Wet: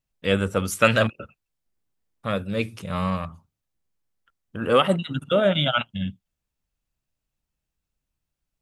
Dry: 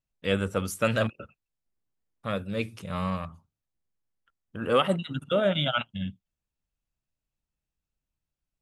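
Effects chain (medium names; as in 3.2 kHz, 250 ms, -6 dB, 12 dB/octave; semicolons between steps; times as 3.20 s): 0.71–1.12 s: peaking EQ 2.4 kHz +9.5 dB -> +0.5 dB 3 oct; trim +4.5 dB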